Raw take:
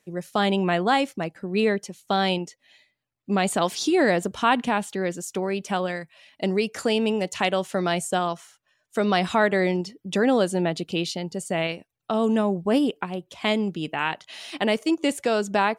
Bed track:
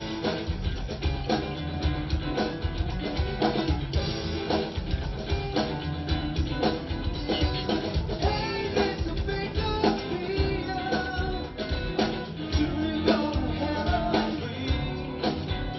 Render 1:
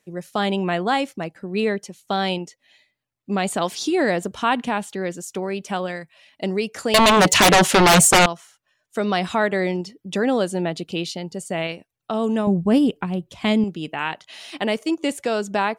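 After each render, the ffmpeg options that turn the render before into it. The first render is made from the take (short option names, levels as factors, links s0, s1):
-filter_complex "[0:a]asettb=1/sr,asplit=3[s0][s1][s2];[s0]atrim=end=6.944[s3];[s1]atrim=start=6.94:end=8.26,asetpts=PTS-STARTPTS,afade=t=in:d=0.004:c=qsin,afade=t=out:st=1.316:d=0.004:c=qsin,aeval=exprs='0.355*sin(PI/2*6.31*val(0)/0.355)':c=same[s4];[s2]atrim=start=8.256[s5];[s3][s4]acrossfade=d=0.004:c1=hsin:c2=qsin[s6];[s6][s5]acrossfade=d=0.004:c1=qsin:c2=hsin,asettb=1/sr,asplit=3[s7][s8][s9];[s7]atrim=end=12.474[s10];[s8]atrim=start=12.47:end=13.64,asetpts=PTS-STARTPTS,afade=t=in:d=0.004:c=qsin,afade=t=out:st=1.166:d=0.004:c=qsin,bass=f=250:g=12,treble=f=4000:g=1[s11];[s9]atrim=start=13.636[s12];[s10][s11]acrossfade=d=0.004:c1=hsin:c2=qsin[s13];[s13][s12]acrossfade=d=0.004:c1=qsin:c2=hsin"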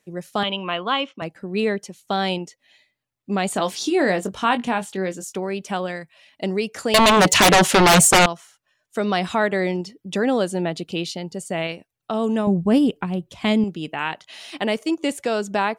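-filter_complex "[0:a]asettb=1/sr,asplit=3[s0][s1][s2];[s0]atrim=end=0.434[s3];[s1]atrim=start=0.43:end=1.22,asetpts=PTS-STARTPTS,afade=t=in:d=0.004:c=qsin,afade=t=out:st=0.786:d=0.004:c=qsin,highpass=290,equalizer=f=390:t=q:w=4:g=-9,equalizer=f=780:t=q:w=4:g=-8,equalizer=f=1100:t=q:w=4:g=8,equalizer=f=1800:t=q:w=4:g=-6,equalizer=f=3000:t=q:w=4:g=9,equalizer=f=4600:t=q:w=4:g=-10,lowpass=f=4900:w=0.5412,lowpass=f=4900:w=1.3066[s4];[s2]atrim=start=1.216[s5];[s3][s4]acrossfade=d=0.004:c1=hsin:c2=qsin[s6];[s6][s5]acrossfade=d=0.004:c1=qsin:c2=hsin,asettb=1/sr,asplit=3[s7][s8][s9];[s7]atrim=end=3.534[s10];[s8]atrim=start=3.53:end=5.34,asetpts=PTS-STARTPTS,afade=t=in:d=0.004:c=qsin,afade=t=out:st=1.806:d=0.004:c=qsin,asplit=2[s11][s12];[s12]adelay=21,volume=0.355[s13];[s11][s13]amix=inputs=2:normalize=0,atrim=end_sample=79821[s14];[s9]atrim=start=5.336[s15];[s10][s14]acrossfade=d=0.004:c1=hsin:c2=qsin[s16];[s16][s15]acrossfade=d=0.004:c1=qsin:c2=hsin"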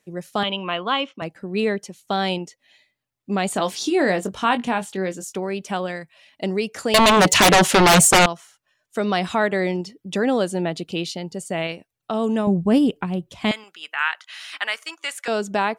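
-filter_complex "[0:a]asettb=1/sr,asplit=3[s0][s1][s2];[s0]atrim=end=13.514[s3];[s1]atrim=start=13.51:end=15.28,asetpts=PTS-STARTPTS,afade=t=in:d=0.004:c=qsin,afade=t=out:st=1.766:d=0.004:c=qsin,highpass=f=1400:t=q:w=2.4[s4];[s2]atrim=start=15.276[s5];[s3][s4]acrossfade=d=0.004:c1=hsin:c2=qsin[s6];[s6][s5]acrossfade=d=0.004:c1=qsin:c2=hsin"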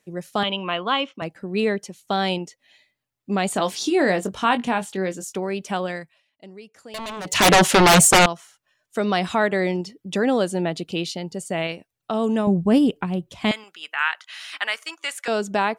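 -filter_complex "[0:a]asplit=3[s0][s1][s2];[s0]atrim=end=6.23,asetpts=PTS-STARTPTS,afade=t=out:st=5.99:d=0.24:silence=0.11885[s3];[s1]atrim=start=6.23:end=7.25,asetpts=PTS-STARTPTS,volume=0.119[s4];[s2]atrim=start=7.25,asetpts=PTS-STARTPTS,afade=t=in:d=0.24:silence=0.11885[s5];[s3][s4][s5]concat=n=3:v=0:a=1"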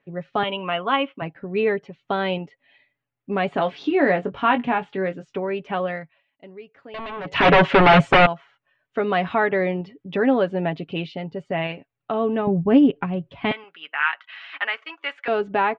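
-af "lowpass=f=2800:w=0.5412,lowpass=f=2800:w=1.3066,aecho=1:1:7.2:0.49"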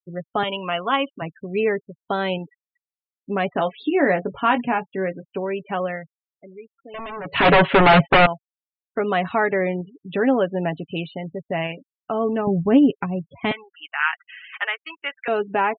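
-af "afftfilt=real='re*gte(hypot(re,im),0.02)':imag='im*gte(hypot(re,im),0.02)':win_size=1024:overlap=0.75,adynamicequalizer=threshold=0.02:dfrequency=4200:dqfactor=0.7:tfrequency=4200:tqfactor=0.7:attack=5:release=100:ratio=0.375:range=1.5:mode=boostabove:tftype=highshelf"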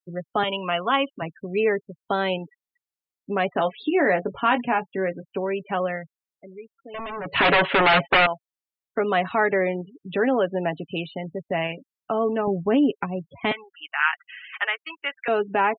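-filter_complex "[0:a]acrossover=split=270|1400[s0][s1][s2];[s0]acompressor=threshold=0.02:ratio=4[s3];[s1]alimiter=limit=0.188:level=0:latency=1:release=12[s4];[s3][s4][s2]amix=inputs=3:normalize=0"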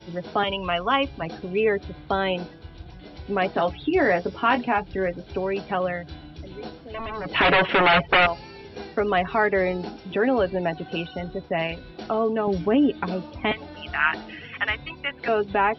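-filter_complex "[1:a]volume=0.237[s0];[0:a][s0]amix=inputs=2:normalize=0"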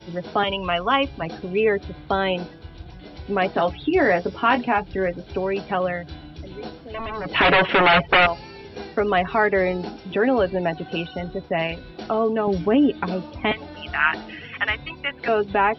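-af "volume=1.26"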